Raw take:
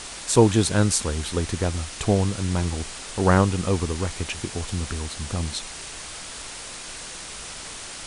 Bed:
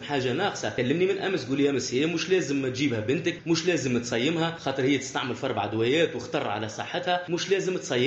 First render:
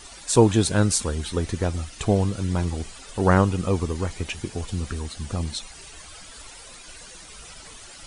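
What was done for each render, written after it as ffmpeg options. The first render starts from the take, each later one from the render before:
ffmpeg -i in.wav -af "afftdn=noise_reduction=12:noise_floor=-37" out.wav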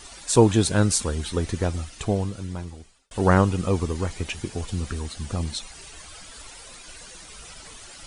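ffmpeg -i in.wav -filter_complex "[0:a]asplit=2[link_01][link_02];[link_01]atrim=end=3.11,asetpts=PTS-STARTPTS,afade=type=out:start_time=1.65:duration=1.46[link_03];[link_02]atrim=start=3.11,asetpts=PTS-STARTPTS,afade=type=in:duration=0.004:curve=hsin[link_04];[link_03][link_04]concat=n=2:v=0:a=1" out.wav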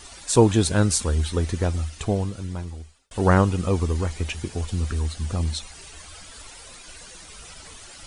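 ffmpeg -i in.wav -af "equalizer=frequency=78:width_type=o:width=0.24:gain=8" out.wav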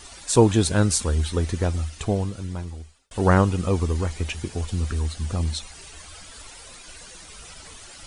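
ffmpeg -i in.wav -af anull out.wav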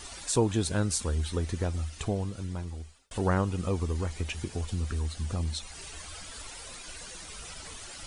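ffmpeg -i in.wav -af "acompressor=threshold=-38dB:ratio=1.5" out.wav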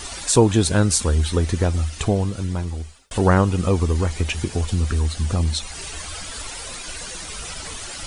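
ffmpeg -i in.wav -af "volume=10.5dB" out.wav

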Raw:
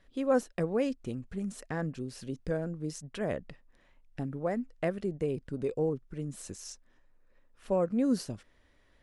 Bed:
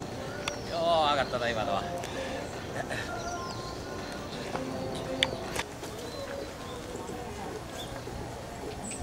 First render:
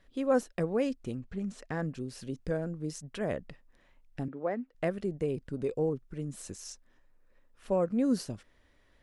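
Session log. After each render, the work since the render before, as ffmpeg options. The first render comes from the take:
ffmpeg -i in.wav -filter_complex "[0:a]asettb=1/sr,asplit=3[link_01][link_02][link_03];[link_01]atrim=end=1.174[link_04];[link_02]atrim=start=1.17:end=1.69,asetpts=PTS-STARTPTS,afade=type=in:duration=0.004:curve=qsin,afade=type=out:start_time=0.516:duration=0.004:curve=qsin,lowpass=5900[link_05];[link_03]atrim=start=1.686[link_06];[link_04][link_05]acrossfade=duration=0.004:curve1=hsin:curve2=qsin[link_07];[link_07][link_06]acrossfade=duration=0.004:curve1=qsin:curve2=hsin,asettb=1/sr,asplit=3[link_08][link_09][link_10];[link_08]atrim=end=4.284[link_11];[link_09]atrim=start=4.28:end=4.75,asetpts=PTS-STARTPTS,afade=type=in:duration=0.004:curve=qsin,afade=type=out:start_time=0.466:duration=0.004:curve=qsin,acrossover=split=200 4100:gain=0.0708 1 0.0708[link_12][link_13][link_14];[link_12][link_13][link_14]amix=inputs=3:normalize=0[link_15];[link_10]atrim=start=4.746[link_16];[link_11][link_15]acrossfade=duration=0.004:curve1=hsin:curve2=qsin[link_17];[link_17][link_16]acrossfade=duration=0.004:curve1=qsin:curve2=hsin" out.wav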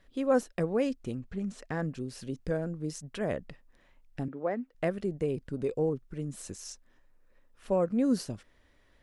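ffmpeg -i in.wav -af "volume=1dB" out.wav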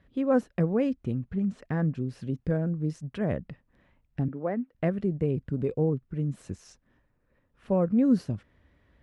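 ffmpeg -i in.wav -af "highpass=63,bass=frequency=250:gain=10,treble=frequency=4000:gain=-13" out.wav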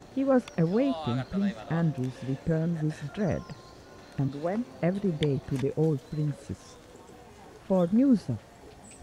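ffmpeg -i in.wav -i bed.wav -filter_complex "[1:a]volume=-11.5dB[link_01];[0:a][link_01]amix=inputs=2:normalize=0" out.wav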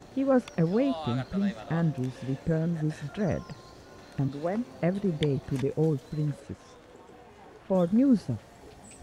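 ffmpeg -i in.wav -filter_complex "[0:a]asettb=1/sr,asplit=3[link_01][link_02][link_03];[link_01]atrim=end=6.404[link_04];[link_02]atrim=start=6.4:end=7.75,asetpts=PTS-STARTPTS,afade=type=in:duration=0.004:curve=qsin,afade=type=out:start_time=1.346:duration=0.004:curve=qsin,bass=frequency=250:gain=-4,treble=frequency=4000:gain=-8[link_05];[link_03]atrim=start=7.746[link_06];[link_04][link_05]acrossfade=duration=0.004:curve1=hsin:curve2=qsin[link_07];[link_07][link_06]acrossfade=duration=0.004:curve1=qsin:curve2=hsin" out.wav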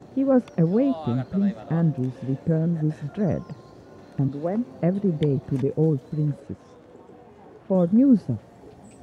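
ffmpeg -i in.wav -af "highpass=100,tiltshelf=frequency=970:gain=6.5" out.wav

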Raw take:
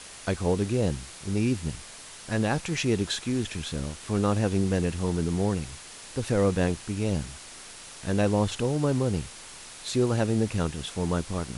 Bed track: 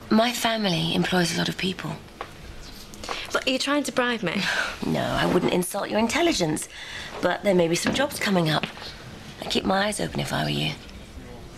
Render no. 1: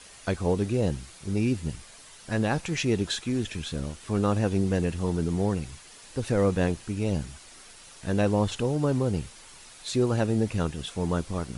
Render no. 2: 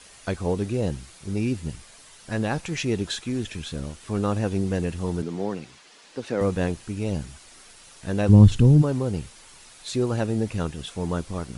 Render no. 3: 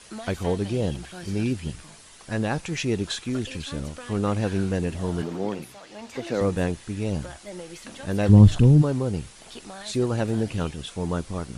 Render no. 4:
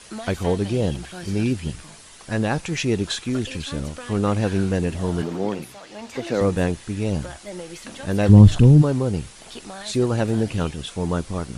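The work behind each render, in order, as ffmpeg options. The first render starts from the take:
ffmpeg -i in.wav -af "afftdn=noise_reduction=7:noise_floor=-45" out.wav
ffmpeg -i in.wav -filter_complex "[0:a]asettb=1/sr,asplit=3[link_01][link_02][link_03];[link_01]atrim=end=5.224[link_04];[link_02]atrim=start=5.22:end=6.41,asetpts=PTS-STARTPTS,afade=type=in:duration=0.004:curve=qsin,afade=type=out:start_time=1.186:duration=0.004:curve=qsin,acrossover=split=170 6400:gain=0.0794 1 0.224[link_05][link_06][link_07];[link_05][link_06][link_07]amix=inputs=3:normalize=0[link_08];[link_03]atrim=start=6.406[link_09];[link_04][link_08]acrossfade=duration=0.004:curve1=hsin:curve2=qsin[link_10];[link_10][link_09]acrossfade=duration=0.004:curve1=qsin:curve2=hsin,asplit=3[link_11][link_12][link_13];[link_11]afade=type=out:start_time=8.28:duration=0.02[link_14];[link_12]asubboost=boost=9:cutoff=210,afade=type=in:start_time=8.28:duration=0.02,afade=type=out:start_time=8.81:duration=0.02[link_15];[link_13]afade=type=in:start_time=8.81:duration=0.02[link_16];[link_14][link_15][link_16]amix=inputs=3:normalize=0" out.wav
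ffmpeg -i in.wav -i bed.wav -filter_complex "[1:a]volume=-18.5dB[link_01];[0:a][link_01]amix=inputs=2:normalize=0" out.wav
ffmpeg -i in.wav -af "volume=3.5dB,alimiter=limit=-1dB:level=0:latency=1" out.wav

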